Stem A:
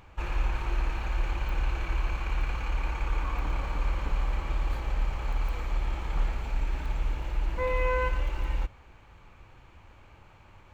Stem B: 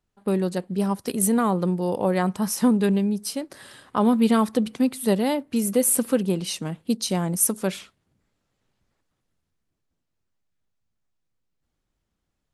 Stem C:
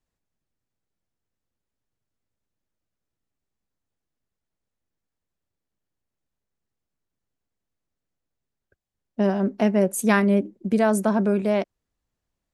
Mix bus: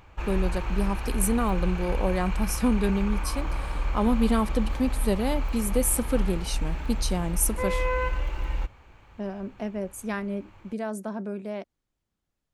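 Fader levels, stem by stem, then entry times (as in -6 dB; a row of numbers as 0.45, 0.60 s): +0.5, -4.5, -12.0 dB; 0.00, 0.00, 0.00 s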